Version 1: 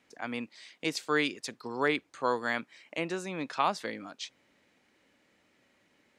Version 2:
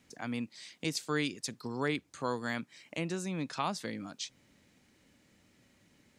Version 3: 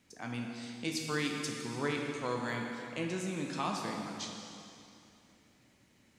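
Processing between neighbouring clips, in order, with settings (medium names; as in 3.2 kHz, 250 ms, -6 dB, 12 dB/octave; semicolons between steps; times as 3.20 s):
tone controls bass +14 dB, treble +9 dB; in parallel at +1 dB: compression, threshold -37 dBFS, peak gain reduction 16 dB; on the sum: trim -8.5 dB
plate-style reverb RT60 2.7 s, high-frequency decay 0.9×, DRR 0 dB; trim -3 dB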